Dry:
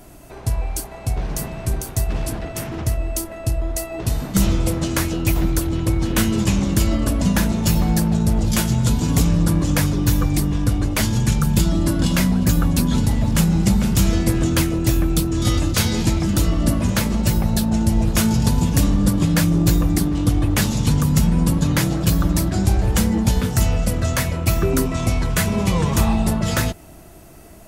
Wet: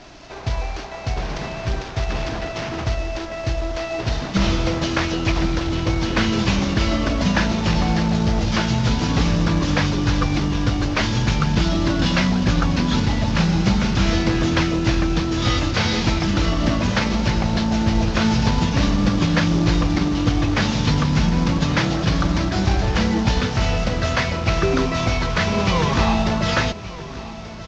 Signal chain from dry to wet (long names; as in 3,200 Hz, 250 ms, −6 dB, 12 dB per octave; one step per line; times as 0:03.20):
variable-slope delta modulation 32 kbit/s
low-shelf EQ 470 Hz −9.5 dB
on a send: repeating echo 1,182 ms, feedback 59%, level −16.5 dB
on the sum: level +7 dB